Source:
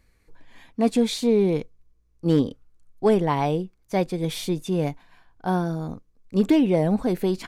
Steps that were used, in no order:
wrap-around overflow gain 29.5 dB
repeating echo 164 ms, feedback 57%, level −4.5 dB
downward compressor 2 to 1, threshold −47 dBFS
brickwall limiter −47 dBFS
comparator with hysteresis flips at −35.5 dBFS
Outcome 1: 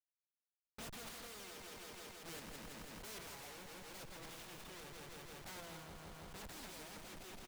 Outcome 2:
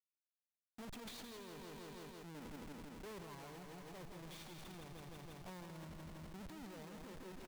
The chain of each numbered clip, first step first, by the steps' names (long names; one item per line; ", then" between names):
wrap-around overflow, then comparator with hysteresis, then repeating echo, then downward compressor, then brickwall limiter
comparator with hysteresis, then downward compressor, then repeating echo, then brickwall limiter, then wrap-around overflow